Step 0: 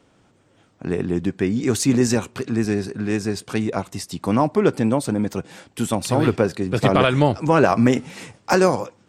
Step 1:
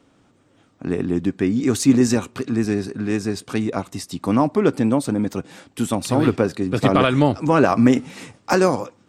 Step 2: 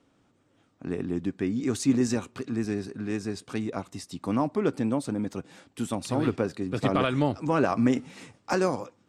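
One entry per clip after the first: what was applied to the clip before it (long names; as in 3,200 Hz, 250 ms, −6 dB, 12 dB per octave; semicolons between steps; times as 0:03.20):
hollow resonant body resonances 270/1,200/3,800 Hz, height 6 dB; level −1 dB
low-pass filter 11,000 Hz 12 dB per octave; level −8.5 dB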